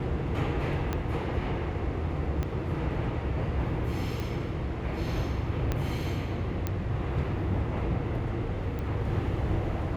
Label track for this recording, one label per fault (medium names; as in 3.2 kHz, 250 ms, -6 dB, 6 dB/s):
0.930000	0.930000	pop -16 dBFS
2.430000	2.430000	pop -19 dBFS
4.200000	4.200000	pop
5.720000	5.720000	pop -15 dBFS
6.670000	6.670000	pop -16 dBFS
8.790000	8.790000	pop -24 dBFS